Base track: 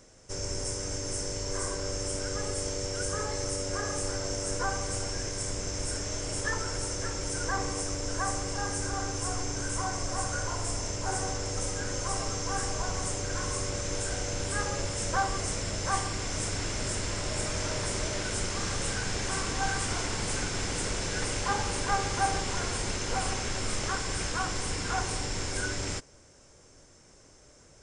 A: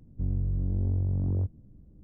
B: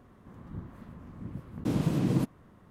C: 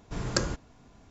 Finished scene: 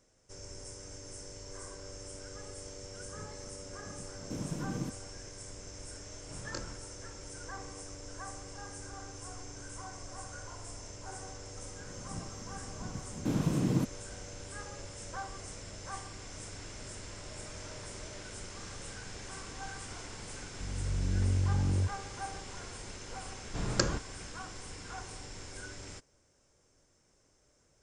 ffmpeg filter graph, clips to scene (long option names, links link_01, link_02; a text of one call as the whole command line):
ffmpeg -i bed.wav -i cue0.wav -i cue1.wav -i cue2.wav -filter_complex "[2:a]asplit=2[link_01][link_02];[3:a]asplit=2[link_03][link_04];[0:a]volume=-13dB[link_05];[link_03]asplit=2[link_06][link_07];[link_07]adelay=24,volume=-4.5dB[link_08];[link_06][link_08]amix=inputs=2:normalize=0[link_09];[1:a]dynaudnorm=framelen=110:gausssize=9:maxgain=11.5dB[link_10];[link_01]atrim=end=2.7,asetpts=PTS-STARTPTS,volume=-10.5dB,afade=type=in:duration=0.004:curve=hsin,afade=type=out:start_time=2.696:duration=0.004:curve=hsin,adelay=2650[link_11];[link_09]atrim=end=1.1,asetpts=PTS-STARTPTS,volume=-15.5dB,afade=type=in:duration=0.004:curve=hsin,afade=type=out:start_time=1.096:duration=0.004:curve=hsin,adelay=272538S[link_12];[link_02]atrim=end=2.7,asetpts=PTS-STARTPTS,volume=-2.5dB,afade=type=in:duration=0.004:curve=hsin,afade=type=out:start_time=2.696:duration=0.004:curve=hsin,adelay=11600[link_13];[link_10]atrim=end=2.03,asetpts=PTS-STARTPTS,volume=-13dB,afade=type=in:duration=0.004:curve=hsin,afade=type=out:start_time=2.026:duration=0.004:curve=hsin,adelay=20410[link_14];[link_04]atrim=end=1.1,asetpts=PTS-STARTPTS,volume=-1.5dB,afade=type=in:duration=0.004:curve=hsin,afade=type=out:start_time=1.096:duration=0.004:curve=hsin,adelay=23430[link_15];[link_05][link_11][link_12][link_13][link_14][link_15]amix=inputs=6:normalize=0" out.wav